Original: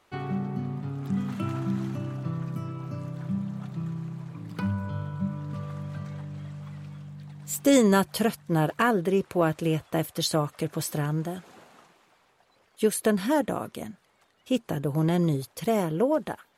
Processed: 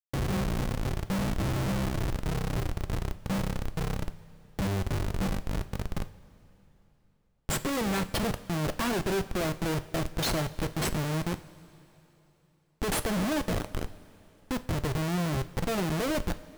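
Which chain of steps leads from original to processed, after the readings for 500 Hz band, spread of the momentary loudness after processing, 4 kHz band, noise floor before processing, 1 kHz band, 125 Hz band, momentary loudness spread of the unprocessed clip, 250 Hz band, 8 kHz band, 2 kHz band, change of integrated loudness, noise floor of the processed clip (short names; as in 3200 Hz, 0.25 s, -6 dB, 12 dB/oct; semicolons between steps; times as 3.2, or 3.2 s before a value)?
-6.0 dB, 7 LU, +0.5 dB, -65 dBFS, -3.5 dB, -1.5 dB, 14 LU, -5.0 dB, -2.0 dB, -0.5 dB, -3.5 dB, -67 dBFS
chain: Schmitt trigger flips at -29 dBFS; two-slope reverb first 0.37 s, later 3.4 s, from -16 dB, DRR 10 dB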